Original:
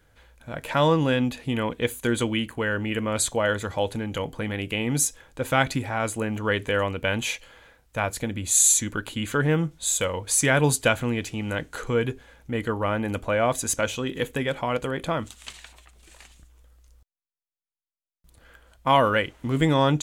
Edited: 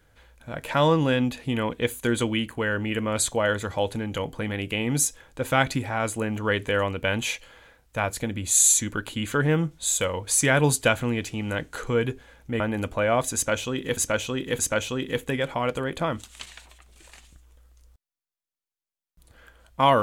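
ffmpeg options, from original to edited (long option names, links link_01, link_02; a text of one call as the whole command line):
ffmpeg -i in.wav -filter_complex "[0:a]asplit=4[link_01][link_02][link_03][link_04];[link_01]atrim=end=12.602[link_05];[link_02]atrim=start=12.908:end=14.282[link_06];[link_03]atrim=start=13.658:end=14.282[link_07];[link_04]atrim=start=13.658[link_08];[link_05][link_06]acrossfade=duration=0.004:curve1=hsin:curve2=hsin[link_09];[link_09][link_07]acrossfade=duration=0.004:curve1=hsin:curve2=hsin[link_10];[link_10][link_08]acrossfade=duration=0.004:curve1=hsin:curve2=hsin" out.wav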